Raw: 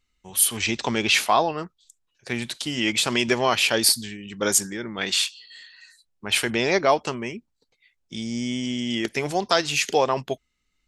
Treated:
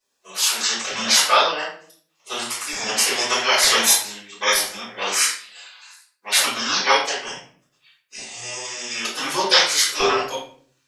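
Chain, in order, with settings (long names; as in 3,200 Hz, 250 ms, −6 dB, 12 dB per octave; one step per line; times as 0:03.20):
auto-filter high-pass saw up 1.1 Hz 650–1,500 Hz
gate on every frequency bin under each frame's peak −15 dB weak
rectangular room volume 60 cubic metres, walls mixed, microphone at 3.5 metres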